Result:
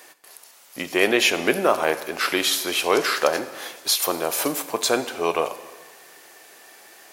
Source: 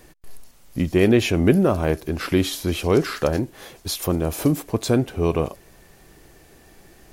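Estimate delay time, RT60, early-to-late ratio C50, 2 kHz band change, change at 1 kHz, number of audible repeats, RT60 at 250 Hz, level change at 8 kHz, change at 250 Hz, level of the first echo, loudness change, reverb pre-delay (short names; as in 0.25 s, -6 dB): none, 1.4 s, 13.0 dB, +7.0 dB, +6.0 dB, none, 1.4 s, +7.5 dB, -8.5 dB, none, -0.5 dB, 11 ms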